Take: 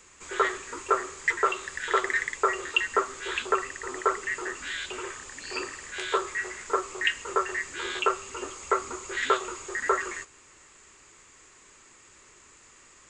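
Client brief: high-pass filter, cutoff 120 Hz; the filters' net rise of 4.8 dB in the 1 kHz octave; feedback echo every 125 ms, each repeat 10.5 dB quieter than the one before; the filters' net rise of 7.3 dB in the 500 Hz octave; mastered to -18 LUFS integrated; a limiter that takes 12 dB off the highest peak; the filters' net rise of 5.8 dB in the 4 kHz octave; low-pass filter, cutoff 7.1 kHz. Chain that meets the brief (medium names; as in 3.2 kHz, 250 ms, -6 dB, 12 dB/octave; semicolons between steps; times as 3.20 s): high-pass 120 Hz; low-pass 7.1 kHz; peaking EQ 500 Hz +8.5 dB; peaking EQ 1 kHz +4.5 dB; peaking EQ 4 kHz +8 dB; peak limiter -16 dBFS; feedback delay 125 ms, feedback 30%, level -10.5 dB; trim +10 dB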